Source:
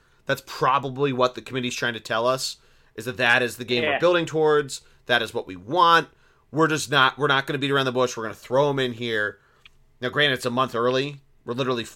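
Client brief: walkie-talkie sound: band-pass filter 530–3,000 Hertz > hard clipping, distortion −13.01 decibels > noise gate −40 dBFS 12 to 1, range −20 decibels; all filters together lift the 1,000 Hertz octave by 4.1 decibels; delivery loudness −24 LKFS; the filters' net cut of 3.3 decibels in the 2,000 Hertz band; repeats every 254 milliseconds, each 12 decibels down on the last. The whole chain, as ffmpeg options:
ffmpeg -i in.wav -af "highpass=530,lowpass=3000,equalizer=frequency=1000:width_type=o:gain=7.5,equalizer=frequency=2000:width_type=o:gain=-8,aecho=1:1:254|508|762:0.251|0.0628|0.0157,asoftclip=type=hard:threshold=-11.5dB,agate=range=-20dB:threshold=-40dB:ratio=12,volume=-0.5dB" out.wav

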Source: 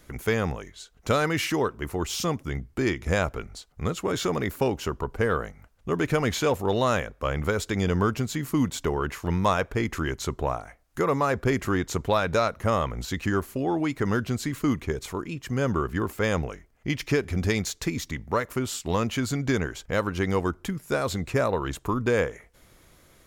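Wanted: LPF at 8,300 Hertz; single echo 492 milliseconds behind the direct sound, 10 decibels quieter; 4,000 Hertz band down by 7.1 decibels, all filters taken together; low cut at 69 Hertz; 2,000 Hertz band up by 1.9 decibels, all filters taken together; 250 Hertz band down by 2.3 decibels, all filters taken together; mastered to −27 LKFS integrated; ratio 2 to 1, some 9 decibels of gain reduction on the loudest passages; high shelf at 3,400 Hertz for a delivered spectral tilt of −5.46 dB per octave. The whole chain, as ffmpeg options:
ffmpeg -i in.wav -af "highpass=69,lowpass=8300,equalizer=frequency=250:width_type=o:gain=-3,equalizer=frequency=2000:width_type=o:gain=6,highshelf=frequency=3400:gain=-8,equalizer=frequency=4000:width_type=o:gain=-6,acompressor=threshold=-36dB:ratio=2,aecho=1:1:492:0.316,volume=8.5dB" out.wav

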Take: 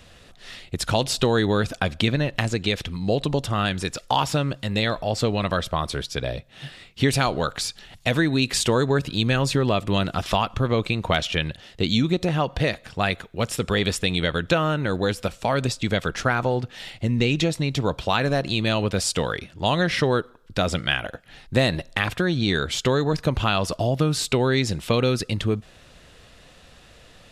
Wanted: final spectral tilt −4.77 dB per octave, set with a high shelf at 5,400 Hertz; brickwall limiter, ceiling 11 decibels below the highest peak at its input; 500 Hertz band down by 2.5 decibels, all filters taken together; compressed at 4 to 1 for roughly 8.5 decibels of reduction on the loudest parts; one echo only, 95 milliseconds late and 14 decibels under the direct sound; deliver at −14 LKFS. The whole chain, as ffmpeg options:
ffmpeg -i in.wav -af "equalizer=frequency=500:width_type=o:gain=-3,highshelf=frequency=5400:gain=-3,acompressor=threshold=-27dB:ratio=4,alimiter=limit=-22dB:level=0:latency=1,aecho=1:1:95:0.2,volume=19dB" out.wav

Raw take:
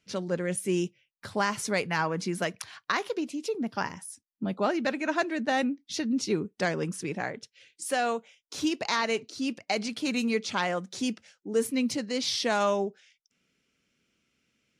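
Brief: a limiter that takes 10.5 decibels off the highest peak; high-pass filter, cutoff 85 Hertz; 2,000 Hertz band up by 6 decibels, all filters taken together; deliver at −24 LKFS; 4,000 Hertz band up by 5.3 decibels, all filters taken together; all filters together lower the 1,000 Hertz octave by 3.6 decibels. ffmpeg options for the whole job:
ffmpeg -i in.wav -af "highpass=85,equalizer=frequency=1000:width_type=o:gain=-7.5,equalizer=frequency=2000:width_type=o:gain=8.5,equalizer=frequency=4000:width_type=o:gain=4.5,volume=6.5dB,alimiter=limit=-12.5dB:level=0:latency=1" out.wav

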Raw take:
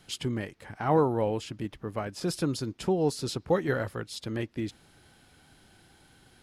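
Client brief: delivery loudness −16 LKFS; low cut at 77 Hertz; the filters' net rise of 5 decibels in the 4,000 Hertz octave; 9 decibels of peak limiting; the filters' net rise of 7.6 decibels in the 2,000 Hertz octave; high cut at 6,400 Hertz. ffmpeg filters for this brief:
ffmpeg -i in.wav -af "highpass=77,lowpass=6400,equalizer=frequency=2000:width_type=o:gain=9,equalizer=frequency=4000:width_type=o:gain=4.5,volume=16.5dB,alimiter=limit=-3.5dB:level=0:latency=1" out.wav

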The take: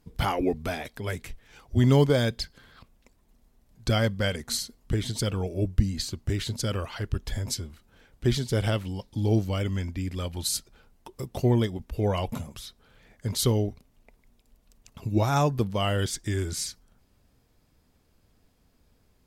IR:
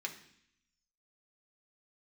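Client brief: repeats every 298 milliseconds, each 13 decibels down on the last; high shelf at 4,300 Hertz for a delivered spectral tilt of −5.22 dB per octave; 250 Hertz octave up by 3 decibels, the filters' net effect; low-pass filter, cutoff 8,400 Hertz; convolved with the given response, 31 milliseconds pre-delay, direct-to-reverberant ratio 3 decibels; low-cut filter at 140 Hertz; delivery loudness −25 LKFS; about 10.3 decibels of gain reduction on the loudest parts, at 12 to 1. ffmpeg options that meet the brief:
-filter_complex "[0:a]highpass=140,lowpass=8400,equalizer=frequency=250:width_type=o:gain=4.5,highshelf=frequency=4300:gain=-6.5,acompressor=threshold=-25dB:ratio=12,aecho=1:1:298|596|894:0.224|0.0493|0.0108,asplit=2[link_01][link_02];[1:a]atrim=start_sample=2205,adelay=31[link_03];[link_02][link_03]afir=irnorm=-1:irlink=0,volume=-3.5dB[link_04];[link_01][link_04]amix=inputs=2:normalize=0,volume=7dB"

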